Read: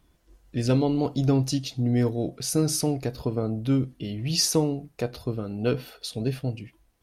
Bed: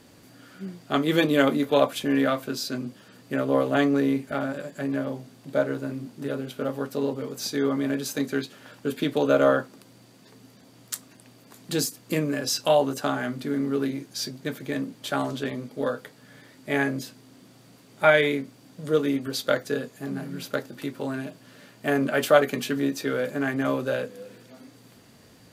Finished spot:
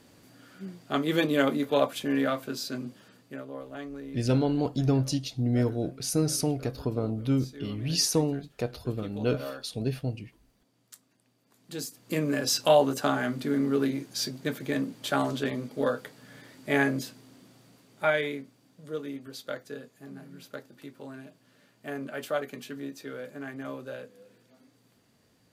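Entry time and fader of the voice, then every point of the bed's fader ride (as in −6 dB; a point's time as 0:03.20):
3.60 s, −2.5 dB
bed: 0:03.06 −4 dB
0:03.53 −18 dB
0:11.41 −18 dB
0:12.34 0 dB
0:16.99 0 dB
0:18.87 −12.5 dB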